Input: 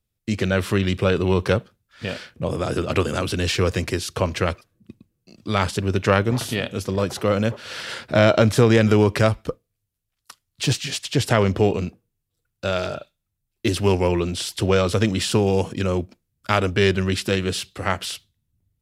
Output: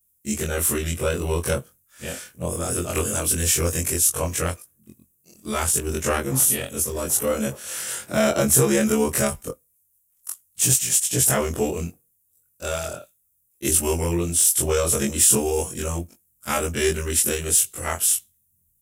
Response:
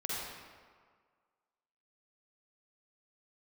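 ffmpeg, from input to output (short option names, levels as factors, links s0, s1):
-af "afftfilt=real='re':imag='-im':win_size=2048:overlap=0.75,aexciter=amount=7.6:drive=9.2:freq=6600"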